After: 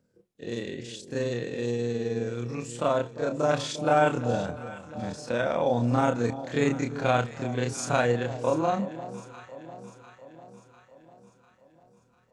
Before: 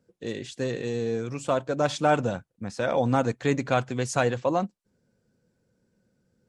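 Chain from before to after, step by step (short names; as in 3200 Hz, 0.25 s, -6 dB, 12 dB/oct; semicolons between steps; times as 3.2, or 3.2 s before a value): granular stretch 1.9×, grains 0.106 s; echo with dull and thin repeats by turns 0.349 s, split 930 Hz, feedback 73%, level -12.5 dB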